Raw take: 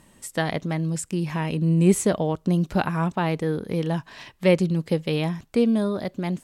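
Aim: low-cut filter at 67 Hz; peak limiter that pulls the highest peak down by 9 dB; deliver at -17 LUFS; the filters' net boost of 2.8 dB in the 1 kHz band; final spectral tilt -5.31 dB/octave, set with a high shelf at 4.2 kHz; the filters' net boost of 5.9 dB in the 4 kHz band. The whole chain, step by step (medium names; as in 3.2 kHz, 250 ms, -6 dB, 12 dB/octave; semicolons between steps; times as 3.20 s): high-pass 67 Hz; peaking EQ 1 kHz +3 dB; peaking EQ 4 kHz +4.5 dB; treble shelf 4.2 kHz +6 dB; trim +8 dB; peak limiter -5 dBFS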